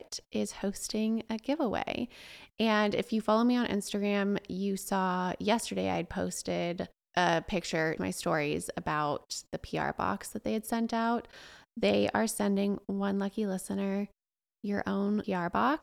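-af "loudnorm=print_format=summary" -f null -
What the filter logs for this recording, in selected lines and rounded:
Input Integrated:    -31.6 LUFS
Input True Peak:     -12.5 dBTP
Input LRA:             2.2 LU
Input Threshold:     -41.8 LUFS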